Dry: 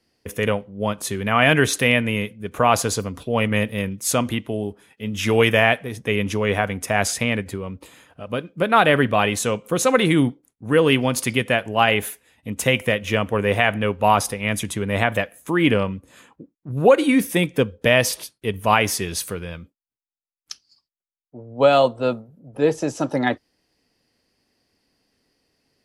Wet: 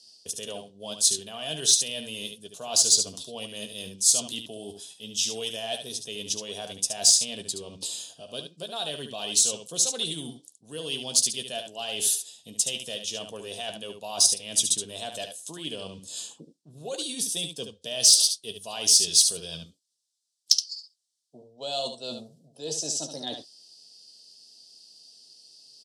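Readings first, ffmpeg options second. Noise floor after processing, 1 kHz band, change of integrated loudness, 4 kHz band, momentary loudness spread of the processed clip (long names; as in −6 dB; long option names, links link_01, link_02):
−70 dBFS, −19.5 dB, −4.0 dB, +2.5 dB, 19 LU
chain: -af "areverse,acompressor=threshold=-33dB:ratio=4,areverse,highpass=120,equalizer=frequency=160:width_type=q:width=4:gain=4,equalizer=frequency=420:width_type=q:width=4:gain=5,equalizer=frequency=670:width_type=q:width=4:gain=9,equalizer=frequency=1300:width_type=q:width=4:gain=-6,equalizer=frequency=2300:width_type=q:width=4:gain=-7,equalizer=frequency=6700:width_type=q:width=4:gain=-5,lowpass=frequency=8000:width=0.5412,lowpass=frequency=8000:width=1.3066,aecho=1:1:13|72:0.316|0.422,aexciter=amount=13.6:drive=9.5:freq=3300,volume=-8dB"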